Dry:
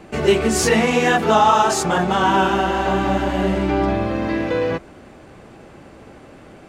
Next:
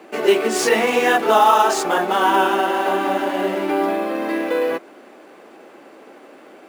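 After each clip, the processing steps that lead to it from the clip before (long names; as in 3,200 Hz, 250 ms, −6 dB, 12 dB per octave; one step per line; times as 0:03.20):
high-pass filter 280 Hz 24 dB per octave
in parallel at −8 dB: sample-rate reduction 12,000 Hz, jitter 0%
on the sum: level −2 dB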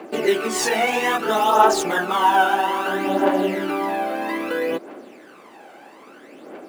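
in parallel at −2 dB: downward compressor, threshold −23 dBFS, peak gain reduction 13 dB
on the sum: phase shifter 0.61 Hz, delay 1.4 ms, feedback 59%
level −5.5 dB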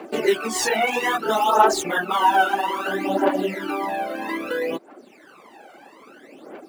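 reverb reduction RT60 0.9 s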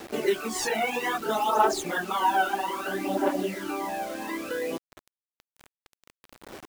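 low-shelf EQ 170 Hz +7 dB
bit reduction 6 bits
level −6.5 dB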